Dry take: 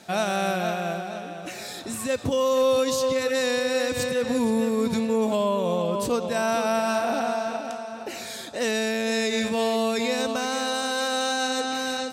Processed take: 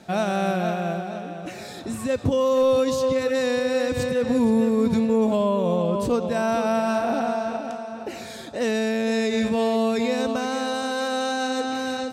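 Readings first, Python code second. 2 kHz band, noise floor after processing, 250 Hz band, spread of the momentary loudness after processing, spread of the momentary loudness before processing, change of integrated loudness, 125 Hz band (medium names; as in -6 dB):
-1.5 dB, -37 dBFS, +4.0 dB, 13 LU, 11 LU, +2.0 dB, +5.0 dB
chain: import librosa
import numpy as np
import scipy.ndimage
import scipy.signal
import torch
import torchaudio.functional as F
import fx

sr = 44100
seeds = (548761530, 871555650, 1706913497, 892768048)

y = fx.tilt_eq(x, sr, slope=-2.0)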